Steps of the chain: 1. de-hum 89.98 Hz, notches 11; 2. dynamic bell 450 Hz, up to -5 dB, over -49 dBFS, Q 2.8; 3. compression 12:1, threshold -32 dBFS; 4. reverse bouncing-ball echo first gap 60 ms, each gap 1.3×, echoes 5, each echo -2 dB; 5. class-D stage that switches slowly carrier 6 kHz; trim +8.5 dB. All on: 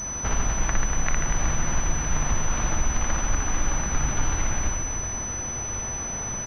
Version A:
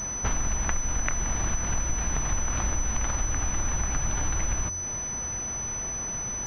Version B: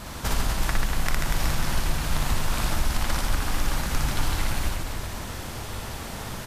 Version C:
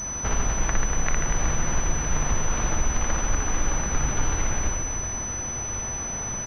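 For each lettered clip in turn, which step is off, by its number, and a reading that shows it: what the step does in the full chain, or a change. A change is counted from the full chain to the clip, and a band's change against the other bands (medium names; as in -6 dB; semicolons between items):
4, crest factor change +4.0 dB; 5, 4 kHz band +8.0 dB; 2, 500 Hz band +2.0 dB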